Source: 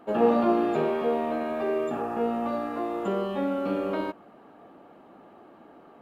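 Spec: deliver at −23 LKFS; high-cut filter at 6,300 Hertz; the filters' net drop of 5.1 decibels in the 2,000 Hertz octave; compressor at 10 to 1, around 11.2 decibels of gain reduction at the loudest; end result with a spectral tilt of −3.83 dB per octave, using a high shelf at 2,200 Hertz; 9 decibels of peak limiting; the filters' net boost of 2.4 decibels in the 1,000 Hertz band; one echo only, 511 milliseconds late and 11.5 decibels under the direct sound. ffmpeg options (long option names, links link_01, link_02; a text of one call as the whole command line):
ffmpeg -i in.wav -af "lowpass=6300,equalizer=frequency=1000:width_type=o:gain=6,equalizer=frequency=2000:width_type=o:gain=-6.5,highshelf=frequency=2200:gain=-6,acompressor=threshold=-26dB:ratio=10,alimiter=level_in=2.5dB:limit=-24dB:level=0:latency=1,volume=-2.5dB,aecho=1:1:511:0.266,volume=12dB" out.wav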